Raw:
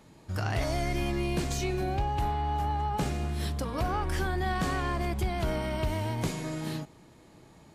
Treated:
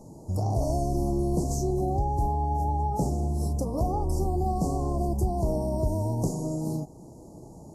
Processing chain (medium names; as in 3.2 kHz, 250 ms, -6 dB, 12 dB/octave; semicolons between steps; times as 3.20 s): inverse Chebyshev band-stop 1.5–3.4 kHz, stop band 50 dB; treble shelf 4.7 kHz -4 dB; in parallel at +2 dB: compression 16:1, threshold -43 dBFS, peak gain reduction 19.5 dB; on the sum: trim +2.5 dB; Vorbis 32 kbps 44.1 kHz